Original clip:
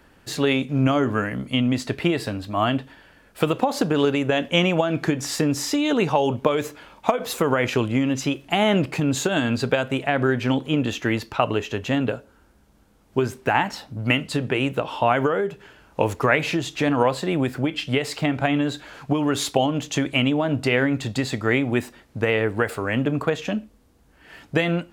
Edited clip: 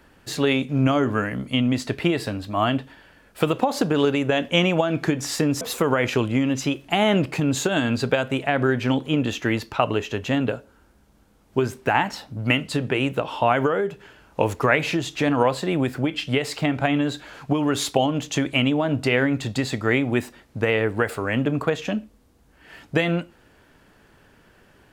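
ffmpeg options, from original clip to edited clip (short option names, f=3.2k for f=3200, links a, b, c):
-filter_complex "[0:a]asplit=2[a][b];[a]atrim=end=5.612[c];[b]atrim=start=7.208[d];[c][d]acrossfade=d=0.004:c1=hsin:c2=hsin"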